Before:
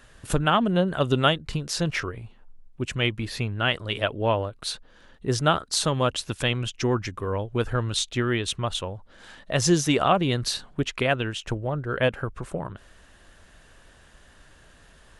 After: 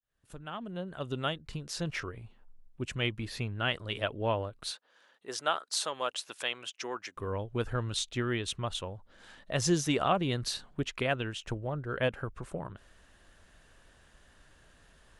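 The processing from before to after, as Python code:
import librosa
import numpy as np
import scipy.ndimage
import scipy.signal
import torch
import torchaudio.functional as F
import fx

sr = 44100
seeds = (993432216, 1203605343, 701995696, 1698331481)

y = fx.fade_in_head(x, sr, length_s=2.32)
y = fx.highpass(y, sr, hz=570.0, slope=12, at=(4.71, 7.17))
y = y * librosa.db_to_amplitude(-7.0)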